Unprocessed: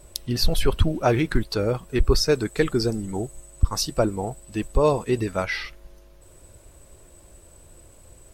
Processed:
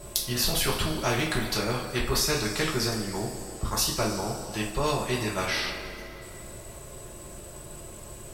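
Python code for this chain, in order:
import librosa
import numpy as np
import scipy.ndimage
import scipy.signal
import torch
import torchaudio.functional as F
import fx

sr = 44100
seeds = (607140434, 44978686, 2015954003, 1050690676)

y = fx.rev_double_slope(x, sr, seeds[0], early_s=0.29, late_s=2.2, knee_db=-21, drr_db=-3.0)
y = fx.spectral_comp(y, sr, ratio=2.0)
y = y * 10.0 ** (-1.0 / 20.0)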